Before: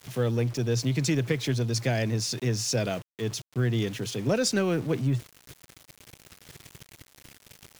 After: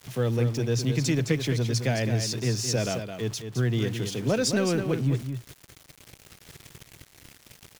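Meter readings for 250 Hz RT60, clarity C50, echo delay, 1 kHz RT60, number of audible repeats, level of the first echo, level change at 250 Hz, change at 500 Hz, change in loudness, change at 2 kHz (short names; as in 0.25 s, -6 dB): none, none, 0.214 s, none, 1, -8.0 dB, +1.0 dB, +0.5 dB, +1.0 dB, +0.5 dB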